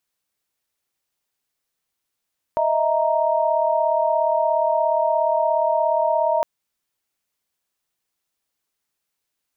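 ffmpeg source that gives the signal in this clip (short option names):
-f lavfi -i "aevalsrc='0.0891*(sin(2*PI*622.25*t)+sin(2*PI*659.26*t)+sin(2*PI*932.33*t))':d=3.86:s=44100"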